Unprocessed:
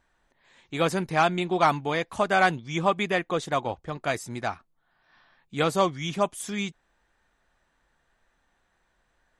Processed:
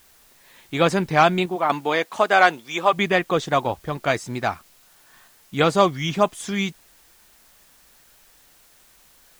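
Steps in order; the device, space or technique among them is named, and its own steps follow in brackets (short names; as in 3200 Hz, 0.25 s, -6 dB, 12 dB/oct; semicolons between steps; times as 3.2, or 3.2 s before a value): worn cassette (LPF 7100 Hz; wow and flutter; level dips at 1.46/5.28, 0.234 s -7 dB; white noise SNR 32 dB); 1.55–2.92 HPF 220 Hz -> 480 Hz 12 dB/oct; gain +6 dB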